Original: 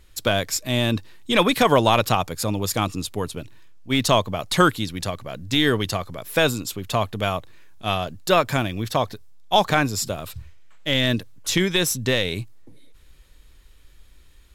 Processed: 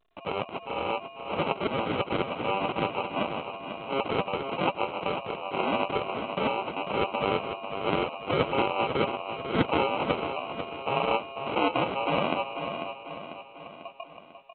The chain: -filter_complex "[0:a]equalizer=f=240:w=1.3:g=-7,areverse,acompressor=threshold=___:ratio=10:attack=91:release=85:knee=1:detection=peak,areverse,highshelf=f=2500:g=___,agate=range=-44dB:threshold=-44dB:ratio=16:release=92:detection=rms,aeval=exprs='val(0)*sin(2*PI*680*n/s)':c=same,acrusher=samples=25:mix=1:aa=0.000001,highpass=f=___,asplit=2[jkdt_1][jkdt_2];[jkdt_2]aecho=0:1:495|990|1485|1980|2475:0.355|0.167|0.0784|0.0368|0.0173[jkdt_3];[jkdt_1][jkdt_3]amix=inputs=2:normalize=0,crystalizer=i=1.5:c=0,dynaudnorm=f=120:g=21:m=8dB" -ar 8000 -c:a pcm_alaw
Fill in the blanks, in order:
-29dB, -7, 150